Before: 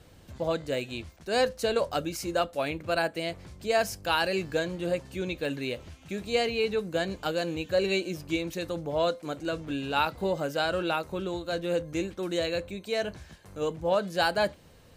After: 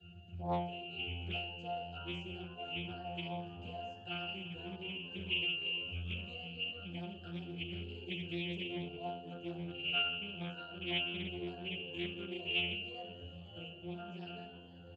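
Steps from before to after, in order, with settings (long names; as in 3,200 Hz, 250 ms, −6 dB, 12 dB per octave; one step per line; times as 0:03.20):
pitch shifter swept by a sawtooth +1.5 semitones, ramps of 620 ms
parametric band 6,700 Hz +11.5 dB 0.31 octaves
downward compressor 10 to 1, threshold −37 dBFS, peak gain reduction 16.5 dB
high shelf with overshoot 2,000 Hz +9.5 dB, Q 1.5
mains-hum notches 60/120/180 Hz
resonances in every octave F, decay 0.66 s
echo with shifted repeats 500 ms, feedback 62%, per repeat +85 Hz, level −13 dB
convolution reverb RT60 0.85 s, pre-delay 3 ms, DRR 4.5 dB
highs frequency-modulated by the lows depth 0.41 ms
level +4.5 dB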